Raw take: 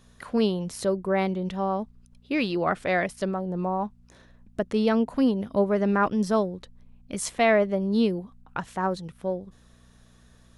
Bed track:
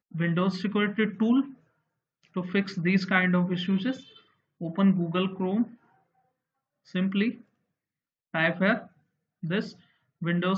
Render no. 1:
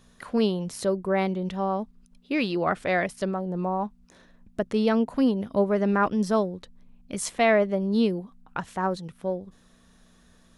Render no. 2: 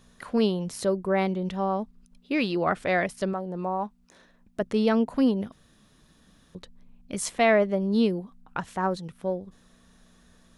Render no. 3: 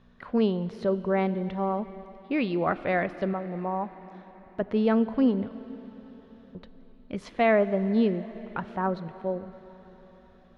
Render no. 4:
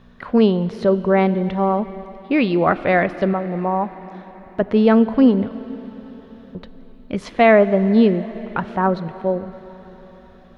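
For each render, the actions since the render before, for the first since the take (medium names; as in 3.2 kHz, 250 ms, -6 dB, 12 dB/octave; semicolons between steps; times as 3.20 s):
de-hum 60 Hz, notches 2
3.33–4.61 s: bass shelf 230 Hz -7.5 dB; 5.52–6.55 s: room tone
distance through air 310 m; plate-style reverb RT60 4.6 s, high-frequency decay 1×, DRR 14 dB
trim +9.5 dB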